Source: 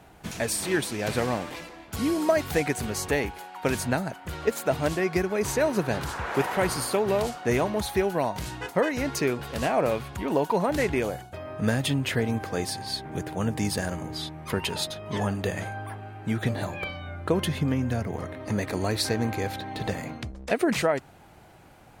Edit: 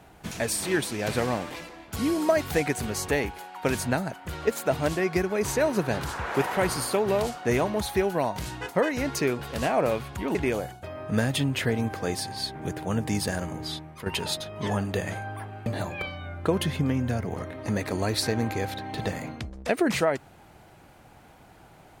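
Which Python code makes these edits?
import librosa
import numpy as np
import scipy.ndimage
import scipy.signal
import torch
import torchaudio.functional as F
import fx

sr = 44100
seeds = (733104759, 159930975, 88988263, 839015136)

y = fx.edit(x, sr, fx.cut(start_s=10.35, length_s=0.5),
    fx.fade_out_to(start_s=14.24, length_s=0.32, floor_db=-12.5),
    fx.cut(start_s=16.16, length_s=0.32), tone=tone)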